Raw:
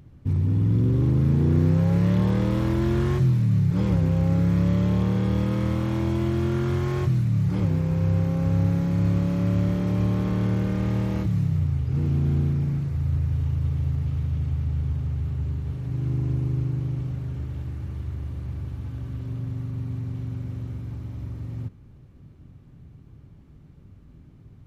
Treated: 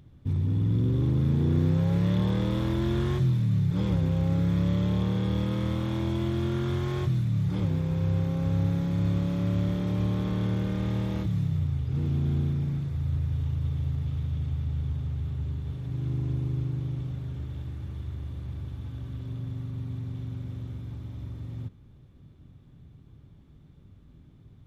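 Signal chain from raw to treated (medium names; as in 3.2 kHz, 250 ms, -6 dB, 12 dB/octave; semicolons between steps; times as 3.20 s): peaking EQ 3.5 kHz +11 dB 0.2 oct; trim -4 dB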